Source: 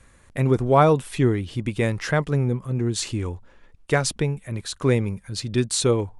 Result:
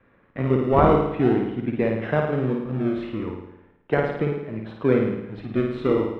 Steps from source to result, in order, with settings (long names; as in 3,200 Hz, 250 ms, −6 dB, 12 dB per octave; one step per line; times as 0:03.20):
three-way crossover with the lows and the highs turned down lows −23 dB, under 160 Hz, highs −21 dB, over 3,700 Hz
in parallel at −5.5 dB: sample-and-hold swept by an LFO 37×, swing 100% 0.38 Hz
on the sum: high-frequency loss of the air 460 metres
notch filter 4,500 Hz, Q 6.8
flutter between parallel walls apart 9.3 metres, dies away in 0.83 s
level −1 dB